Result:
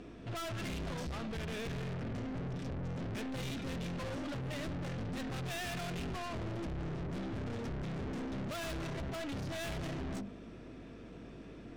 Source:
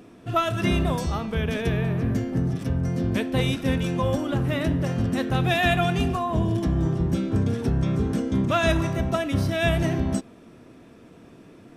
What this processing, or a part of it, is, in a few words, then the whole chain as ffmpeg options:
valve amplifier with mains hum: -af "lowpass=5.6k,bandreject=f=50:t=h:w=6,bandreject=f=100:t=h:w=6,bandreject=f=150:t=h:w=6,bandreject=f=200:t=h:w=6,bandreject=f=250:t=h:w=6,bandreject=f=300:t=h:w=6,bandreject=f=350:t=h:w=6,aeval=exprs='(tanh(79.4*val(0)+0.25)-tanh(0.25))/79.4':c=same,aeval=exprs='val(0)+0.00158*(sin(2*PI*50*n/s)+sin(2*PI*2*50*n/s)/2+sin(2*PI*3*50*n/s)/3+sin(2*PI*4*50*n/s)/4+sin(2*PI*5*50*n/s)/5)':c=same,equalizer=f=950:t=o:w=0.91:g=-3.5"

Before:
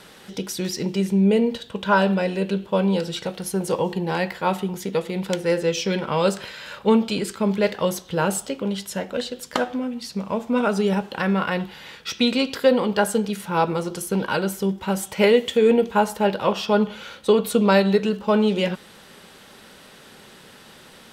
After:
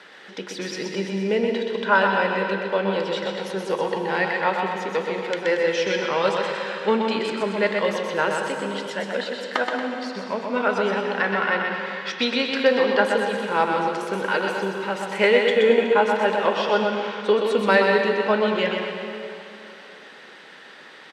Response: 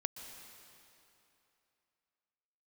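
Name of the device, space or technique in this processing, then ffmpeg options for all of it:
station announcement: -filter_complex "[0:a]highpass=310,lowpass=4.5k,equalizer=f=1.8k:t=o:w=0.57:g=8,aecho=1:1:125.4|230.3:0.562|0.282[a];[1:a]atrim=start_sample=2205[b];[a][b]afir=irnorm=-1:irlink=0"

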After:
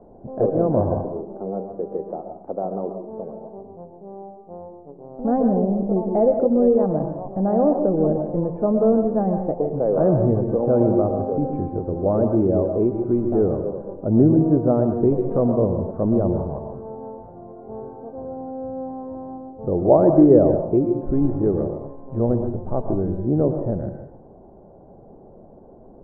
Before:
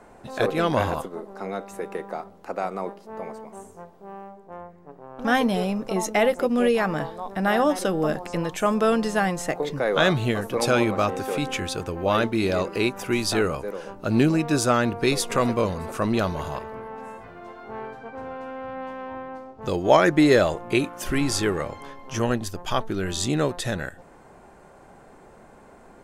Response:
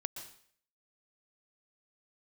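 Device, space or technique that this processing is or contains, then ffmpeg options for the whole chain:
next room: -filter_complex "[0:a]lowpass=f=670:w=0.5412,lowpass=f=670:w=1.3066[a];[1:a]atrim=start_sample=2205[b];[a][b]afir=irnorm=-1:irlink=0,volume=6dB"

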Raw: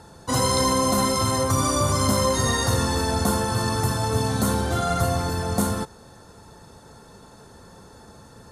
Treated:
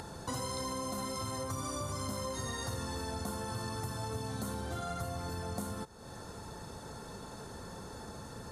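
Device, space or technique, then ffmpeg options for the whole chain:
upward and downward compression: -af "acompressor=mode=upward:threshold=-44dB:ratio=2.5,acompressor=threshold=-40dB:ratio=4,volume=1dB"

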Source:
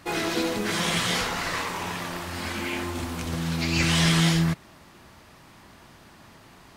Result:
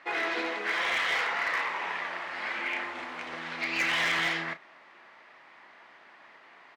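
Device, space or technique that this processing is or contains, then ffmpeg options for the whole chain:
megaphone: -filter_complex "[0:a]asettb=1/sr,asplit=3[a][b][c];[a]atrim=end=0.544[d];[b]atrim=start=0.54:end=1.31,asetpts=PTS-STARTPTS,afade=t=in:d=0.004:c=qsin,afade=t=out:st=0.766:d=0.004:c=qsin,highpass=260[e];[c]atrim=start=1.306[f];[d][e]acrossfade=d=0.004:c1=hsin:c2=qsin[g];[g][f]acrossfade=d=0.004:c1=qsin:c2=hsin,highpass=570,lowpass=2.7k,equalizer=f=2k:t=o:w=0.51:g=7,asoftclip=type=hard:threshold=-21dB,asplit=2[h][i];[i]adelay=33,volume=-12dB[j];[h][j]amix=inputs=2:normalize=0,volume=-1.5dB"

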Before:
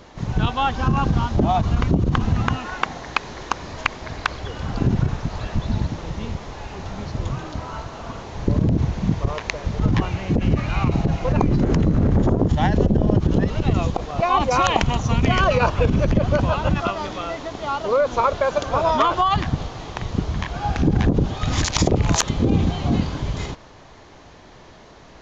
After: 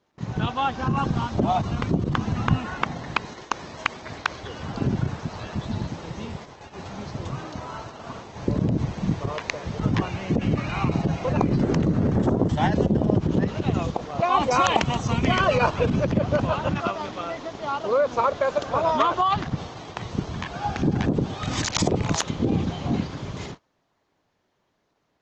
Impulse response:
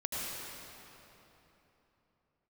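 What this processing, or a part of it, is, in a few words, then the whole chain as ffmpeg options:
video call: -filter_complex "[0:a]asettb=1/sr,asplit=3[a][b][c];[a]atrim=end=2.484[d];[b]atrim=start=2.48:end=3.25,asetpts=PTS-STARTPTS,afade=t=in:d=0.004:c=qsin,afade=t=out:st=0.766:d=0.004:c=qsin,bass=f=250:g=11,treble=f=4k:g=-3[e];[c]atrim=start=3.246[f];[d][e]acrossfade=d=0.004:c1=hsin:c2=qsin[g];[g][f]acrossfade=d=0.004:c1=qsin:c2=hsin,highpass=110,dynaudnorm=f=740:g=13:m=5dB,agate=range=-21dB:threshold=-35dB:ratio=16:detection=peak,volume=-2.5dB" -ar 48000 -c:a libopus -b:a 16k

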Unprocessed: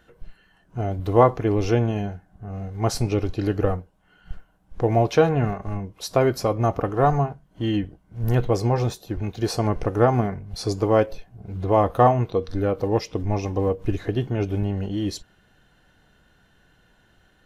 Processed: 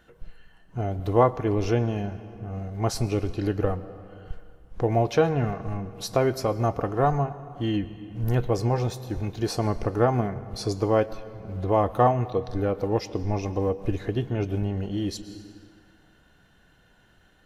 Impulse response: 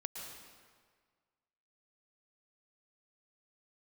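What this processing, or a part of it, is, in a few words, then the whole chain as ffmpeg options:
ducked reverb: -filter_complex "[0:a]asplit=3[a][b][c];[1:a]atrim=start_sample=2205[d];[b][d]afir=irnorm=-1:irlink=0[e];[c]apad=whole_len=769603[f];[e][f]sidechaincompress=threshold=-28dB:ratio=4:attack=30:release=710,volume=-1.5dB[g];[a][g]amix=inputs=2:normalize=0,volume=-4.5dB"

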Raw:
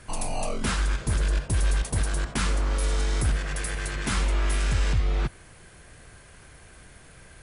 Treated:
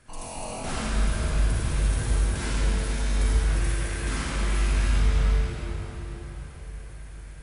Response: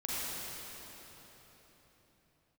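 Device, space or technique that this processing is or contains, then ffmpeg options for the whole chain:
cathedral: -filter_complex "[0:a]asettb=1/sr,asplit=3[a][b][c];[a]atrim=end=2.224[d];[b]atrim=start=2.22:end=3.03,asetpts=PTS-STARTPTS,afade=t=in:d=0.004:c=qsin,afade=t=out:st=0.806:d=0.004:c=qsin,bandreject=f=1.2k:w=5.1[e];[c]atrim=start=3.026[f];[d][e]acrossfade=d=0.004:c1=hsin:c2=qsin[g];[g][f]acrossfade=d=0.004:c1=qsin:c2=hsin[h];[1:a]atrim=start_sample=2205[i];[h][i]afir=irnorm=-1:irlink=0,volume=-6.5dB"

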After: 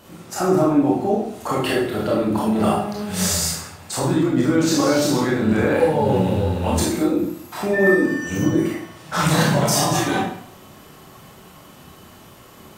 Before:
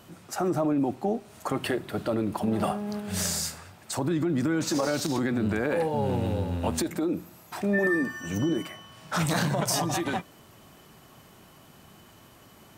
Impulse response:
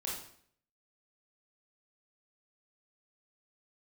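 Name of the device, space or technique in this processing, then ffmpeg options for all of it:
bathroom: -filter_complex "[1:a]atrim=start_sample=2205[a];[0:a][a]afir=irnorm=-1:irlink=0,volume=7dB"

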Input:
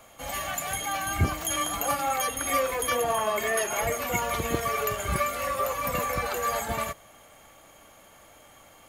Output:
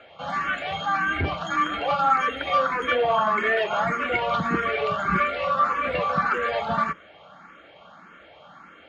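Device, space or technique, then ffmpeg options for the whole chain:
barber-pole phaser into a guitar amplifier: -filter_complex "[0:a]asplit=2[a][b];[b]afreqshift=1.7[c];[a][c]amix=inputs=2:normalize=1,asoftclip=type=tanh:threshold=-20dB,highpass=94,equalizer=f=110:t=q:w=4:g=-9,equalizer=f=180:t=q:w=4:g=8,equalizer=f=1.4k:t=q:w=4:g=10,lowpass=f=3.8k:w=0.5412,lowpass=f=3.8k:w=1.3066,volume=6.5dB"

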